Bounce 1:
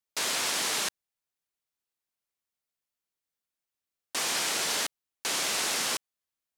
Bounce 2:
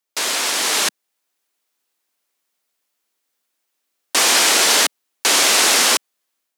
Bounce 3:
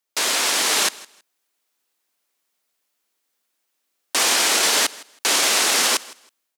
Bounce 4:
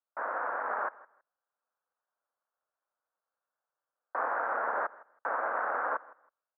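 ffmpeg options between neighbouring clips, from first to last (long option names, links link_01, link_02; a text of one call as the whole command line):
ffmpeg -i in.wav -af "highpass=frequency=220:width=0.5412,highpass=frequency=220:width=1.3066,dynaudnorm=framelen=580:gausssize=3:maxgain=7dB,volume=8dB" out.wav
ffmpeg -i in.wav -af "alimiter=limit=-9dB:level=0:latency=1:release=20,aecho=1:1:161|322:0.0891|0.0187" out.wav
ffmpeg -i in.wav -af "asuperpass=centerf=870:order=12:qfactor=0.82,tremolo=f=220:d=0.519,equalizer=frequency=700:width=0.63:gain=-3" out.wav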